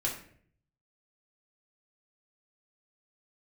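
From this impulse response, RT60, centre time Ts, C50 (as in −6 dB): 0.55 s, 26 ms, 6.5 dB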